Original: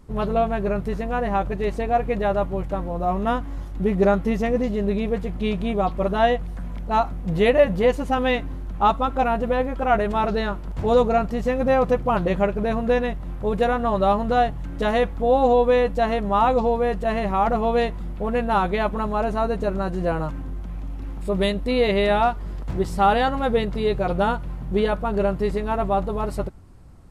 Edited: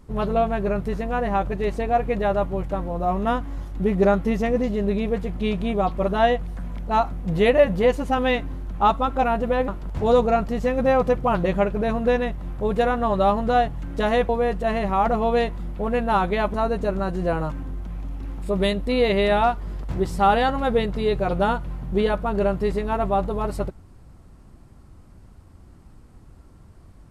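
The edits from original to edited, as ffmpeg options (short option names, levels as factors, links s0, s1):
-filter_complex "[0:a]asplit=4[s0][s1][s2][s3];[s0]atrim=end=9.682[s4];[s1]atrim=start=10.498:end=15.112[s5];[s2]atrim=start=16.698:end=18.952[s6];[s3]atrim=start=19.328[s7];[s4][s5]acrossfade=d=0.004:c1=hsin:c2=hsin[s8];[s8][s6]acrossfade=d=0.004:c1=hsin:c2=hsin[s9];[s9][s7]acrossfade=d=0.004:c1=hsin:c2=hsin"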